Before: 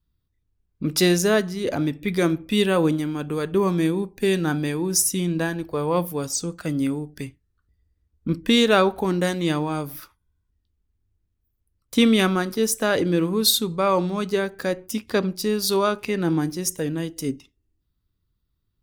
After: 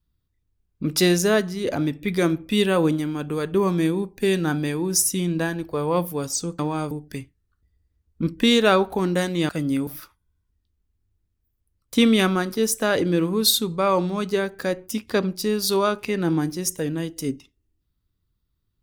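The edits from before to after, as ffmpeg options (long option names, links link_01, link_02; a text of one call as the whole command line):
ffmpeg -i in.wav -filter_complex "[0:a]asplit=5[link_01][link_02][link_03][link_04][link_05];[link_01]atrim=end=6.592[link_06];[link_02]atrim=start=9.548:end=9.872[link_07];[link_03]atrim=start=6.968:end=9.552[link_08];[link_04]atrim=start=6.588:end=6.972[link_09];[link_05]atrim=start=9.868[link_10];[link_06][link_07]acrossfade=duration=0.004:curve1=hsin:curve2=hsin[link_11];[link_11][link_08]acrossfade=duration=0.004:curve1=hsin:curve2=hsin[link_12];[link_12][link_09]acrossfade=duration=0.004:curve1=hsin:curve2=hsin[link_13];[link_13][link_10]acrossfade=duration=0.004:curve1=hsin:curve2=hsin" out.wav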